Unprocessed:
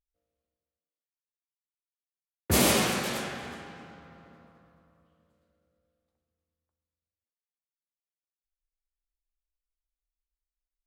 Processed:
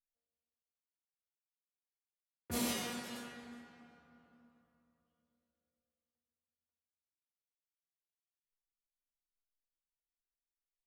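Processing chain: resonator 240 Hz, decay 0.36 s, harmonics all, mix 90%; gain -1.5 dB

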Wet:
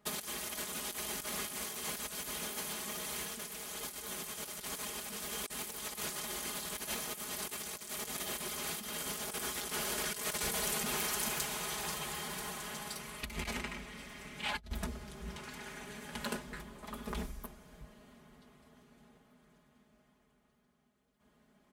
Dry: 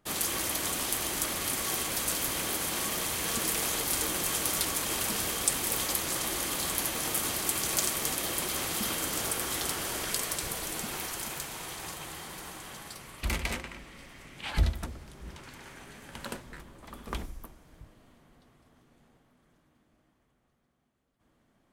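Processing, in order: HPF 46 Hz; comb 4.8 ms, depth 93%; negative-ratio compressor -33 dBFS, ratio -0.5; gain -5.5 dB

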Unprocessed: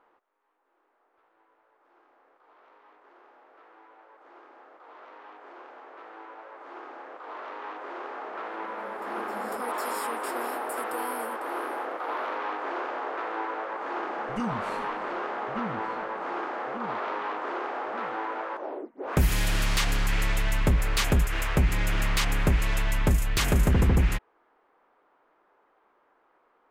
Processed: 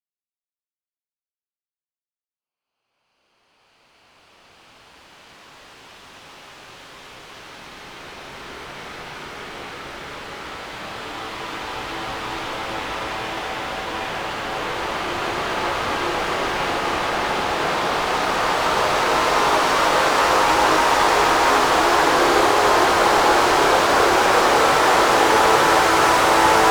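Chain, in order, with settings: fuzz box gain 50 dB, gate -51 dBFS; Paulstretch 5.7×, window 1.00 s, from 1.56; gain +3 dB

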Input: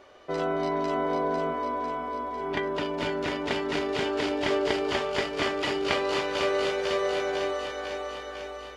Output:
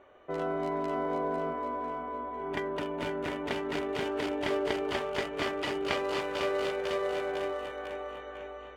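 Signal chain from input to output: Wiener smoothing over 9 samples; gain -4 dB

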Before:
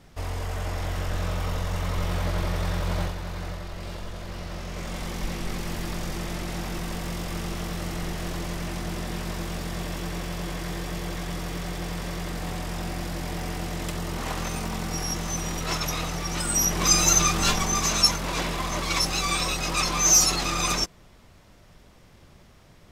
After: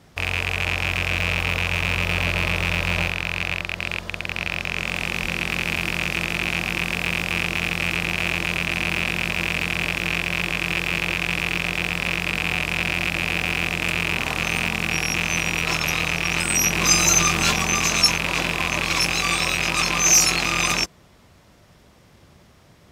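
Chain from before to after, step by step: rattling part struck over -33 dBFS, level -11 dBFS; HPF 60 Hz 12 dB/oct; gain +2 dB

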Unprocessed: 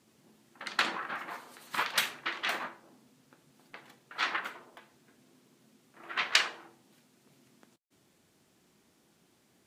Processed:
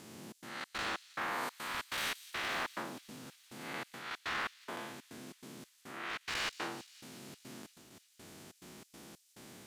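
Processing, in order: time blur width 0.197 s; one-sided clip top -41 dBFS; reverse; compressor 10:1, threshold -50 dBFS, peak gain reduction 18 dB; reverse; step gate "xxx.xx.xx.." 141 bpm -60 dB; thin delay 0.175 s, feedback 78%, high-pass 4600 Hz, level -11.5 dB; gain +16 dB

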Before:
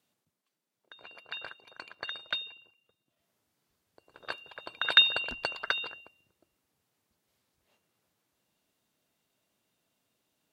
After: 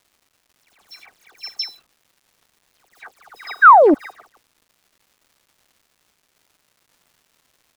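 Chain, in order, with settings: speed glide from 151% -> 120%; HPF 180 Hz 24 dB/oct; high shelf 3500 Hz +2 dB; comb 2.6 ms, depth 55%; dynamic EQ 4800 Hz, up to +3 dB, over -37 dBFS, Q 0.88; low-pass opened by the level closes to 1500 Hz, open at -27.5 dBFS; painted sound fall, 3.54–3.83, 260–1700 Hz -8 dBFS; low-pass sweep 7500 Hz -> 1300 Hz, 1.13–3.25; bit-crush 8-bit; dispersion lows, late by 0.117 s, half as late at 2400 Hz; crackle 520/s -45 dBFS; Doppler distortion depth 0.34 ms; gain -3 dB

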